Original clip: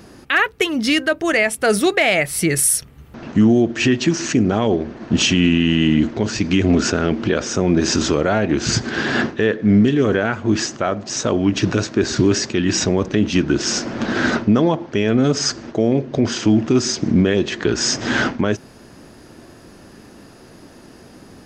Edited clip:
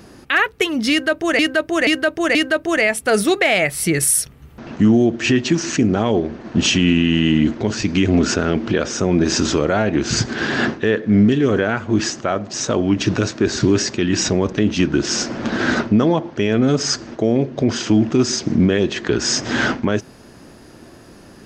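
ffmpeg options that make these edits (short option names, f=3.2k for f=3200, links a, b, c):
-filter_complex "[0:a]asplit=4[a][b][c][d];[a]atrim=end=1.392[e];[b]atrim=start=0.908:end=1.392[f];[c]atrim=start=0.908:end=1.392[g];[d]atrim=start=0.908[h];[e][f]acrossfade=d=0.004:c1=hsin:c2=hsin[i];[i][g]acrossfade=d=0.004:c1=hsin:c2=hsin[j];[j][h]acrossfade=d=0.004:c1=hsin:c2=hsin"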